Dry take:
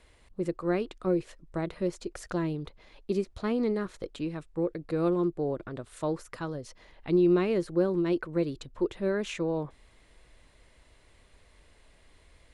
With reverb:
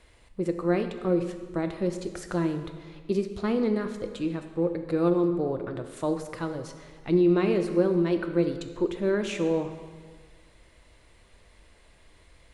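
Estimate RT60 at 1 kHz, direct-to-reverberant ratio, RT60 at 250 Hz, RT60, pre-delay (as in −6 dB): 1.6 s, 6.5 dB, 1.6 s, 1.6 s, 3 ms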